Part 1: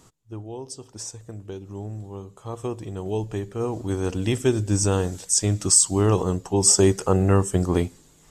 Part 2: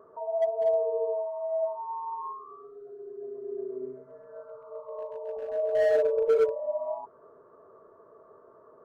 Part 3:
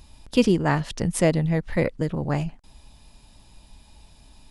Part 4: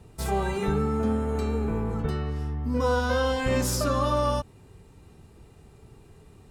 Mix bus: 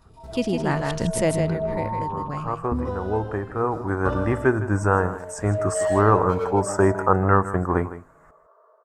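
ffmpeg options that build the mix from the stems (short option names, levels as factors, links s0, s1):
-filter_complex "[0:a]firequalizer=gain_entry='entry(320,0);entry(990,11);entry(1500,14);entry(3200,-23);entry(9000,-14)':delay=0.05:min_phase=1,volume=0.251,asplit=2[s0][s1];[s1]volume=0.2[s2];[1:a]highpass=f=580:w=0.5412,highpass=f=580:w=1.3066,flanger=delay=15.5:depth=2.2:speed=0.79,volume=0.447,asplit=2[s3][s4];[s4]volume=0.501[s5];[2:a]agate=range=0.398:threshold=0.00501:ratio=16:detection=peak,volume=0.422,afade=t=out:st=0.88:d=0.73:silence=0.237137,asplit=3[s6][s7][s8];[s7]volume=0.501[s9];[3:a]lowpass=f=1000:p=1,acompressor=threshold=0.0251:ratio=6,aeval=exprs='val(0)*pow(10,-34*if(lt(mod(0.75*n/s,1),2*abs(0.75)/1000),1-mod(0.75*n/s,1)/(2*abs(0.75)/1000),(mod(0.75*n/s,1)-2*abs(0.75)/1000)/(1-2*abs(0.75)/1000))/20)':c=same,adelay=50,volume=0.841,asplit=2[s10][s11];[s11]volume=0.178[s12];[s8]apad=whole_len=289071[s13];[s10][s13]sidechaincompress=threshold=0.00398:ratio=8:attack=16:release=140[s14];[s2][s5][s9][s12]amix=inputs=4:normalize=0,aecho=0:1:158:1[s15];[s0][s3][s6][s14][s15]amix=inputs=5:normalize=0,dynaudnorm=f=540:g=3:m=3.98"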